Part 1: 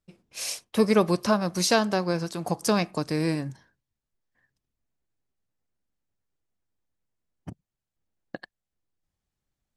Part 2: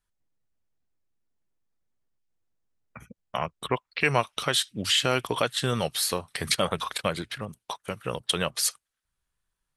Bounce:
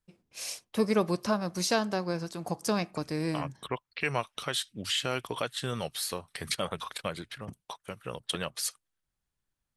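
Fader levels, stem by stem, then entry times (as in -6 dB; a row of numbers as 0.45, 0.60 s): -5.5, -7.0 dB; 0.00, 0.00 s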